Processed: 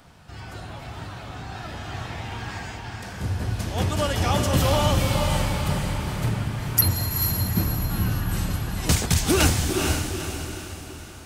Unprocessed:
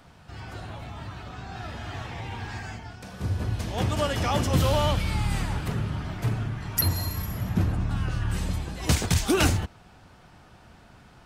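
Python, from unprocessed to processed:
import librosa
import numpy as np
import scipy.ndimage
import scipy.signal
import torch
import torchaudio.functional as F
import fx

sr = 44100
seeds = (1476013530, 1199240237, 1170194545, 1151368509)

p1 = fx.high_shelf(x, sr, hz=6300.0, db=6.0)
p2 = p1 + fx.echo_diffused(p1, sr, ms=459, feedback_pct=47, wet_db=-3.5, dry=0)
y = F.gain(torch.from_numpy(p2), 1.0).numpy()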